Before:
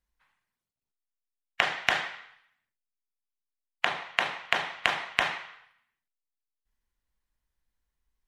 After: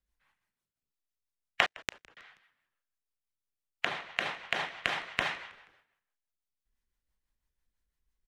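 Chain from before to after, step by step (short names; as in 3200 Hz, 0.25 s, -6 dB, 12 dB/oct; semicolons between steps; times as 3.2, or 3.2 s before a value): 1.66–2.17 power-law curve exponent 3; rotary speaker horn 6 Hz; frequency-shifting echo 0.16 s, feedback 49%, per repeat -82 Hz, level -23 dB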